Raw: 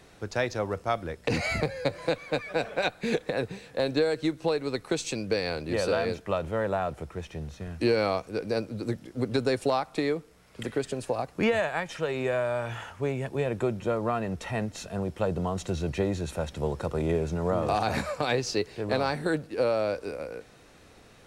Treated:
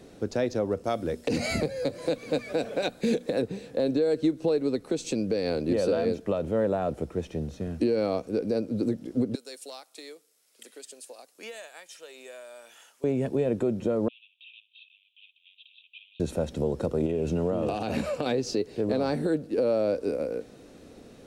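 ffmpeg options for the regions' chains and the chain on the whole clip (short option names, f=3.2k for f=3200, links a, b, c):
-filter_complex "[0:a]asettb=1/sr,asplit=3[a][b][c];[a]atrim=end=0.844[d];[b]atrim=start=0.84:end=3.42,asetpts=PTS-STARTPTS,afade=t=in:d=0.004:c=qsin,afade=t=out:st=2.576:d=0.004:c=qsin,highshelf=f=3.5k:g=8,bandreject=f=60:t=h:w=6,bandreject=f=120:t=h:w=6,bandreject=f=180:t=h:w=6,bandreject=f=240:t=h:w=6,aecho=1:1:955:0.0708,atrim=end_sample=113778[e];[c]atrim=start=3.416[f];[d][e]acrossfade=d=0.004:c1=hsin:c2=qsin[g];[g][f]acrossfade=d=0.004:c1=qsin:c2=hsin,asettb=1/sr,asplit=3[h][i][j];[h]atrim=end=9.354[k];[i]atrim=start=9.35:end=13.04,asetpts=PTS-STARTPTS,afade=t=in:d=0.004:c=qsin,afade=t=out:st=3.686:d=0.004:c=qsin,highpass=290,aderivative[l];[j]atrim=start=13.036[m];[k][l]acrossfade=d=0.004:c1=hsin:c2=qsin[n];[n][m]acrossfade=d=0.004:c1=qsin:c2=hsin,asettb=1/sr,asplit=3[o][p][q];[o]atrim=end=14.084[r];[p]atrim=start=14.08:end=16.2,asetpts=PTS-STARTPTS,afade=t=in:d=0.004:c=qsin,afade=t=out:st=2.116:d=0.004:c=qsin,volume=31dB,asoftclip=hard,volume=-31dB,asuperpass=centerf=3000:order=12:qfactor=2.4[s];[q]atrim=start=16.196[t];[r][s]acrossfade=d=0.004:c1=hsin:c2=qsin[u];[u][t]acrossfade=d=0.004:c1=qsin:c2=hsin,asettb=1/sr,asplit=3[v][w][x];[v]atrim=end=17.064[y];[w]atrim=start=17.06:end=18.26,asetpts=PTS-STARTPTS,afade=t=in:d=0.004:c=qsin,afade=t=out:st=1.196:d=0.004:c=qsin,equalizer=f=2.8k:t=o:w=0.31:g=12,acompressor=threshold=-28dB:ratio=6:attack=3.2:release=140:knee=1:detection=peak[z];[x]atrim=start=18.256[aa];[y][z]acrossfade=d=0.004:c1=hsin:c2=qsin[ab];[ab][aa]acrossfade=d=0.004:c1=qsin:c2=hsin,equalizer=f=250:t=o:w=1:g=10,equalizer=f=500:t=o:w=1:g=6,equalizer=f=1k:t=o:w=1:g=-4,equalizer=f=2k:t=o:w=1:g=-4,alimiter=limit=-16.5dB:level=0:latency=1:release=221"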